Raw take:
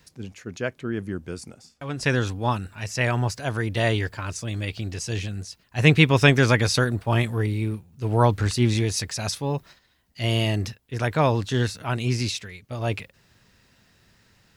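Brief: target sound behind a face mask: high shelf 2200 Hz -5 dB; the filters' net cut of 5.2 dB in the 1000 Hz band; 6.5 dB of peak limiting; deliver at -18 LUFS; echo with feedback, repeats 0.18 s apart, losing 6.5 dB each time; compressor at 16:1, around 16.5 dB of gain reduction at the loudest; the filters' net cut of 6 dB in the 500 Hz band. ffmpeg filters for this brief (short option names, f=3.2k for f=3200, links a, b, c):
-af "equalizer=f=500:t=o:g=-6.5,equalizer=f=1k:t=o:g=-3.5,acompressor=threshold=-28dB:ratio=16,alimiter=limit=-24dB:level=0:latency=1,highshelf=f=2.2k:g=-5,aecho=1:1:180|360|540|720|900|1080:0.473|0.222|0.105|0.0491|0.0231|0.0109,volume=16.5dB"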